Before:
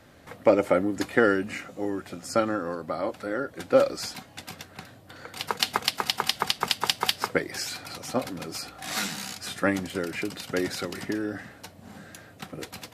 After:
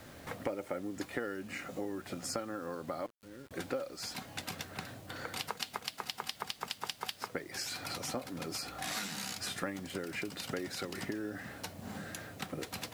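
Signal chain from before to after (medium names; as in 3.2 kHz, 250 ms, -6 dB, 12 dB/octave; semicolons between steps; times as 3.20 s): 3.06–3.51 s: amplifier tone stack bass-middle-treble 10-0-1; compression 6:1, threshold -38 dBFS, peak gain reduction 22.5 dB; bit crusher 10-bit; trim +2 dB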